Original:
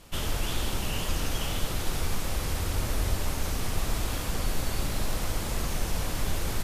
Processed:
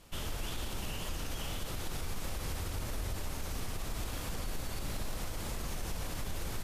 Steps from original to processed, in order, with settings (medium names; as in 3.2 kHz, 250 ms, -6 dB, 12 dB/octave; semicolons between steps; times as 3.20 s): peak limiter -22 dBFS, peak gain reduction 8 dB; trim -6 dB